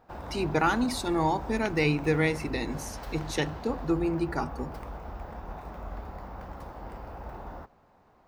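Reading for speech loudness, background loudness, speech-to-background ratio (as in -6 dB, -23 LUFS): -29.0 LUFS, -41.5 LUFS, 12.5 dB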